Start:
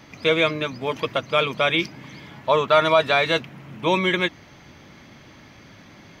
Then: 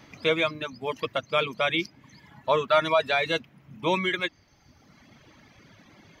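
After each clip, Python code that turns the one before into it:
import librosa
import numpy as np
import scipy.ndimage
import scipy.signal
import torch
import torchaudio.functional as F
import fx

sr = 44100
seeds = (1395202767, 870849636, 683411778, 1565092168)

y = fx.dereverb_blind(x, sr, rt60_s=1.4)
y = y * 10.0 ** (-4.0 / 20.0)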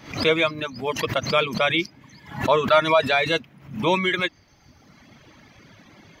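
y = fx.pre_swell(x, sr, db_per_s=120.0)
y = y * 10.0 ** (4.0 / 20.0)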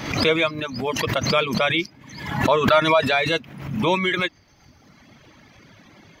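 y = fx.pre_swell(x, sr, db_per_s=63.0)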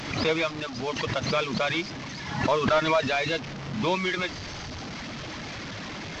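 y = fx.delta_mod(x, sr, bps=32000, step_db=-25.0)
y = y * 10.0 ** (-5.5 / 20.0)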